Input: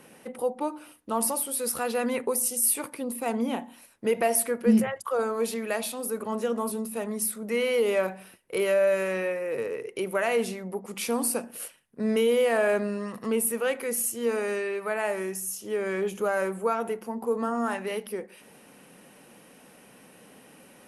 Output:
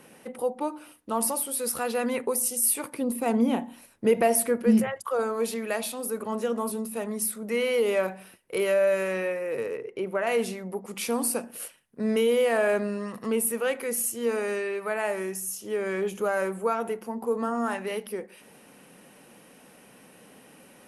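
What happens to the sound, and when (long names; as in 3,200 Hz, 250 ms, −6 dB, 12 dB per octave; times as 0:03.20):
0:02.93–0:04.63: low-shelf EQ 460 Hz +7 dB
0:09.77–0:10.27: low-pass filter 1,600 Hz 6 dB per octave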